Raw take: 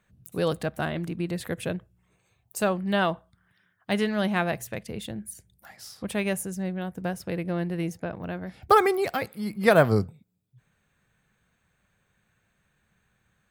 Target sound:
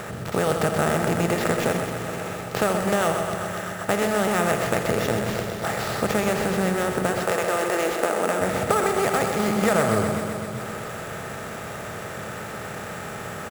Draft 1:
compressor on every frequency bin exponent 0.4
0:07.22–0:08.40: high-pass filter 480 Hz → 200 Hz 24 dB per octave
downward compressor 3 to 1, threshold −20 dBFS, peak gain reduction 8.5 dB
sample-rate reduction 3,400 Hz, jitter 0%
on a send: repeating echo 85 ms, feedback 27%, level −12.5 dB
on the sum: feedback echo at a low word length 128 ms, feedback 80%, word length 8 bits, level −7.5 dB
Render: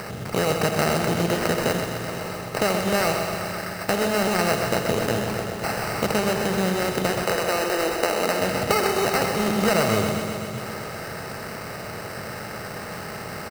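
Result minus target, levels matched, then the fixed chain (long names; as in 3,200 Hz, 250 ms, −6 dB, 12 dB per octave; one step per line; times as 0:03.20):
sample-rate reduction: distortion +7 dB
compressor on every frequency bin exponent 0.4
0:07.22–0:08.40: high-pass filter 480 Hz → 200 Hz 24 dB per octave
downward compressor 3 to 1, threshold −20 dBFS, peak gain reduction 8.5 dB
sample-rate reduction 9,200 Hz, jitter 0%
on a send: repeating echo 85 ms, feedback 27%, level −12.5 dB
on the sum: feedback echo at a low word length 128 ms, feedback 80%, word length 8 bits, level −7.5 dB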